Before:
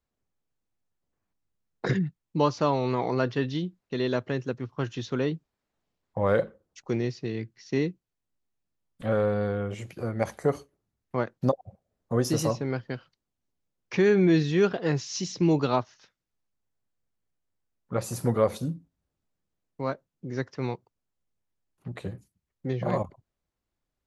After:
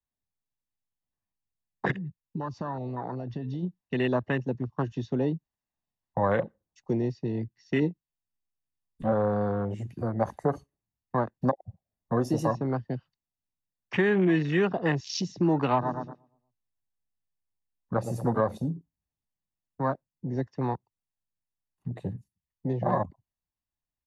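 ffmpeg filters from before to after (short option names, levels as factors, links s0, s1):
-filter_complex "[0:a]asplit=3[s0][s1][s2];[s0]afade=t=out:st=1.9:d=0.02[s3];[s1]acompressor=threshold=0.0224:ratio=10:attack=3.2:release=140:knee=1:detection=peak,afade=t=in:st=1.9:d=0.02,afade=t=out:st=3.62:d=0.02[s4];[s2]afade=t=in:st=3.62:d=0.02[s5];[s3][s4][s5]amix=inputs=3:normalize=0,asettb=1/sr,asplit=3[s6][s7][s8];[s6]atrim=end=7.804[s9];[s7]atrim=start=7.8:end=9.12,asetpts=PTS-STARTPTS,afade=t=in:d=0.004:c=qsin,afade=t=out:st=1.316:d=0.004:c=qsin,asplit=2[s10][s11];[s11]adelay=13,volume=0.501[s12];[s10][s12]amix=inputs=2:normalize=0,atrim=end_sample=58212[s13];[s8]atrim=start=9.116[s14];[s9][s13]acrossfade=d=0.004:c1=hsin:c2=qsin[s15];[s15][s14]acrossfade=d=0.004:c1=qsin:c2=hsin,asplit=3[s16][s17][s18];[s16]afade=t=out:st=15.8:d=0.02[s19];[s17]asplit=2[s20][s21];[s21]adelay=117,lowpass=f=1400:p=1,volume=0.422,asplit=2[s22][s23];[s23]adelay=117,lowpass=f=1400:p=1,volume=0.49,asplit=2[s24][s25];[s25]adelay=117,lowpass=f=1400:p=1,volume=0.49,asplit=2[s26][s27];[s27]adelay=117,lowpass=f=1400:p=1,volume=0.49,asplit=2[s28][s29];[s29]adelay=117,lowpass=f=1400:p=1,volume=0.49,asplit=2[s30][s31];[s31]adelay=117,lowpass=f=1400:p=1,volume=0.49[s32];[s20][s22][s24][s26][s28][s30][s32]amix=inputs=7:normalize=0,afade=t=in:st=15.8:d=0.02,afade=t=out:st=18.39:d=0.02[s33];[s18]afade=t=in:st=18.39:d=0.02[s34];[s19][s33][s34]amix=inputs=3:normalize=0,aecho=1:1:1.1:0.47,afwtdn=0.0178,acrossover=split=100|260[s35][s36][s37];[s35]acompressor=threshold=0.00316:ratio=4[s38];[s36]acompressor=threshold=0.0126:ratio=4[s39];[s37]acompressor=threshold=0.0501:ratio=4[s40];[s38][s39][s40]amix=inputs=3:normalize=0,volume=1.68"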